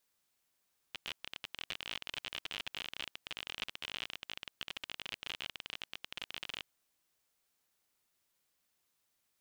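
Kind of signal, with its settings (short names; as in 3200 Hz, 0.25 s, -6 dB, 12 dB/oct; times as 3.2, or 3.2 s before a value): random clicks 38/s -23.5 dBFS 5.72 s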